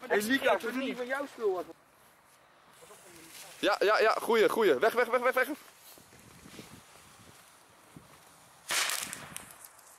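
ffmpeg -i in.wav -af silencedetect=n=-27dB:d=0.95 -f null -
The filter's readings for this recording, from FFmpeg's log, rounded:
silence_start: 1.61
silence_end: 3.63 | silence_duration: 2.03
silence_start: 5.43
silence_end: 8.70 | silence_duration: 3.27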